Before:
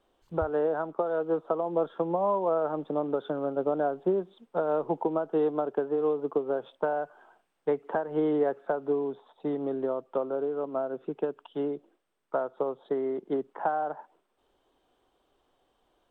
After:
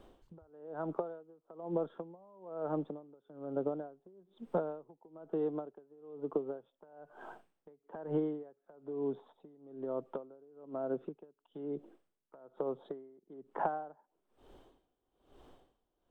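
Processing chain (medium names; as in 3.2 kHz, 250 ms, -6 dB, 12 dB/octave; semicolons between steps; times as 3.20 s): bass shelf 460 Hz +11 dB; compression 10:1, threshold -37 dBFS, peak gain reduction 22 dB; logarithmic tremolo 1.1 Hz, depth 27 dB; trim +7 dB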